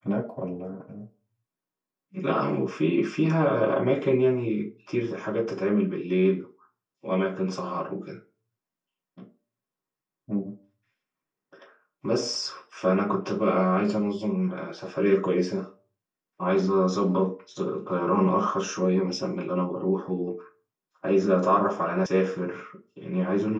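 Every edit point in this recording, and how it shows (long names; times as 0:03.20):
0:22.06: cut off before it has died away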